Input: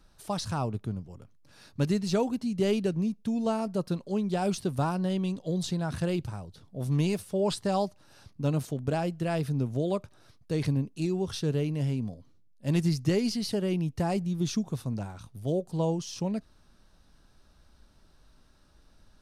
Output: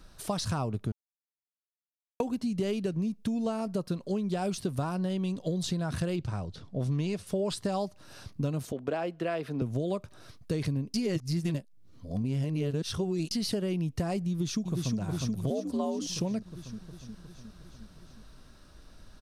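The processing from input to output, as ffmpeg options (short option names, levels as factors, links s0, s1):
-filter_complex "[0:a]asettb=1/sr,asplit=3[s0][s1][s2];[s0]atrim=end=6.164[s3];[s1]atrim=start=6.16:end=7.27,asetpts=PTS-STARTPTS,afade=t=in:d=0.004:c=qsin,afade=t=out:st=1.106:d=0.004:c=qsin,lowpass=6600[s4];[s2]atrim=start=7.266[s5];[s3][s4]acrossfade=d=0.004:c1=hsin:c2=qsin[s6];[s6][s5]acrossfade=d=0.004:c1=qsin:c2=hsin,asettb=1/sr,asplit=3[s7][s8][s9];[s7]atrim=end=8.724[s10];[s8]atrim=start=8.72:end=9.62,asetpts=PTS-STARTPTS,afade=t=in:d=0.004:c=qsin,afade=t=out:st=0.896:d=0.004:c=qsin,acrossover=split=270 3600:gain=0.112 1 0.2[s11][s12][s13];[s11][s12][s13]amix=inputs=3:normalize=0[s14];[s9]atrim=start=9.616[s15];[s10][s14]acrossfade=d=0.004:c1=hsin:c2=qsin[s16];[s16][s15]acrossfade=d=0.004:c1=qsin:c2=hsin,asplit=2[s17][s18];[s18]afade=t=in:st=14.29:d=0.01,afade=t=out:st=14.98:d=0.01,aecho=0:1:360|720|1080|1440|1800|2160|2520|2880|3240|3600:0.562341|0.365522|0.237589|0.154433|0.100381|0.0652479|0.0424112|0.0275673|0.0179187|0.0116472[s19];[s17][s19]amix=inputs=2:normalize=0,asettb=1/sr,asplit=3[s20][s21][s22];[s20]atrim=end=15.504[s23];[s21]atrim=start=15.5:end=16.07,asetpts=PTS-STARTPTS,afade=t=in:d=0.004:c=qsin,afade=t=out:st=0.566:d=0.004:c=qsin,afreqshift=74[s24];[s22]atrim=start=16.066[s25];[s23][s24]acrossfade=d=0.004:c1=hsin:c2=qsin[s26];[s26][s25]acrossfade=d=0.004:c1=qsin:c2=hsin,asplit=5[s27][s28][s29][s30][s31];[s27]atrim=end=0.92,asetpts=PTS-STARTPTS,afade=t=out:st=0.916:d=0.004:c=hsin[s32];[s28]atrim=start=0.92:end=2.2,asetpts=PTS-STARTPTS,volume=0[s33];[s29]atrim=start=2.2:end=10.942,asetpts=PTS-STARTPTS,afade=t=in:d=0.004:c=hsin[s34];[s30]atrim=start=10.938:end=13.312,asetpts=PTS-STARTPTS,areverse[s35];[s31]atrim=start=13.308[s36];[s32][s33][s34]concat=n=3:v=0:a=1[s37];[s37][s35]acrossfade=d=0.004:c1=hsin:c2=hsin[s38];[s38][s36]acrossfade=d=0.004:c1=hsin:c2=hsin,bandreject=f=850:w=12,acompressor=threshold=0.0178:ratio=6,volume=2.24"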